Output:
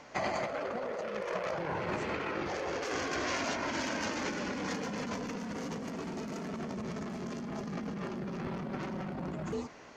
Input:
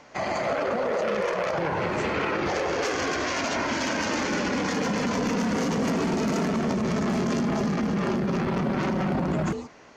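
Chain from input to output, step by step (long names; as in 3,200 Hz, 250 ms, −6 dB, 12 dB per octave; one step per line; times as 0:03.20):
compressor whose output falls as the input rises −29 dBFS, ratio −0.5
level −6 dB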